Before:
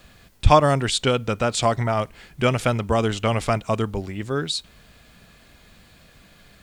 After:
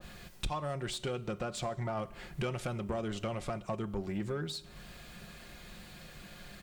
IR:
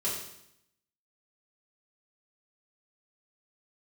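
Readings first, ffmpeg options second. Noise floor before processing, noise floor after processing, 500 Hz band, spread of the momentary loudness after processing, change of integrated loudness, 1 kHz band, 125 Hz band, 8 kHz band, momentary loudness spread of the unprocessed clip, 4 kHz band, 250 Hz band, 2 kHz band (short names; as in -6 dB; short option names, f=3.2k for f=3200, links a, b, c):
-53 dBFS, -53 dBFS, -15.5 dB, 14 LU, -15.5 dB, -18.0 dB, -15.0 dB, -15.0 dB, 11 LU, -15.0 dB, -12.5 dB, -15.5 dB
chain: -filter_complex "[0:a]aecho=1:1:5.6:0.41,acompressor=threshold=-30dB:ratio=16,asoftclip=type=tanh:threshold=-28.5dB,asplit=2[a][b];[1:a]atrim=start_sample=2205[c];[b][c]afir=irnorm=-1:irlink=0,volume=-19.5dB[d];[a][d]amix=inputs=2:normalize=0,adynamicequalizer=threshold=0.00251:dfrequency=1600:dqfactor=0.7:tfrequency=1600:tqfactor=0.7:attack=5:release=100:ratio=0.375:range=3:mode=cutabove:tftype=highshelf"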